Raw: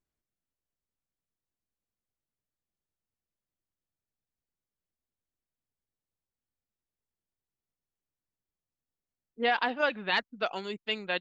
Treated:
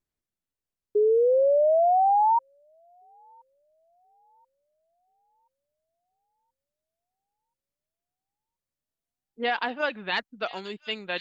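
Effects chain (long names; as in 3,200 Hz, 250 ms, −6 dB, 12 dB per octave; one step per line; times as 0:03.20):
sound drawn into the spectrogram rise, 0:00.95–0:02.39, 410–940 Hz −20 dBFS
delay with a high-pass on its return 1,030 ms, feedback 40%, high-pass 4,300 Hz, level −5 dB
tape wow and flutter 17 cents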